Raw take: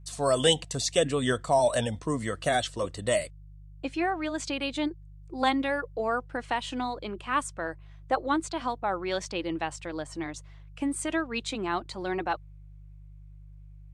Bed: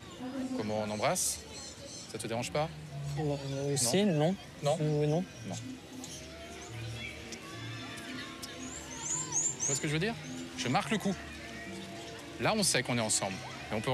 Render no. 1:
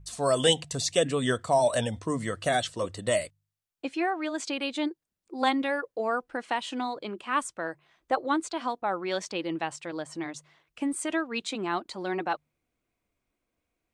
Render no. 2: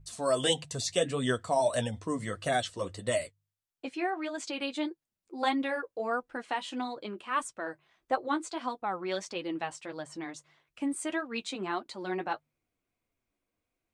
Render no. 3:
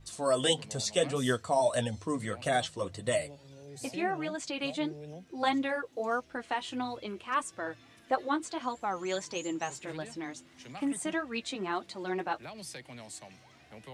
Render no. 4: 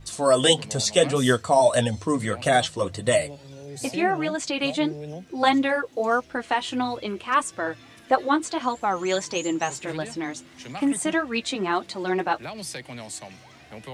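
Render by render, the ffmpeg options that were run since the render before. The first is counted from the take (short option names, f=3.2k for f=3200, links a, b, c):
-af "bandreject=f=50:t=h:w=4,bandreject=f=100:t=h:w=4,bandreject=f=150:t=h:w=4"
-af "flanger=delay=7.6:depth=3.4:regen=-35:speed=1.6:shape=sinusoidal"
-filter_complex "[1:a]volume=-15.5dB[a];[0:a][a]amix=inputs=2:normalize=0"
-af "volume=9dB"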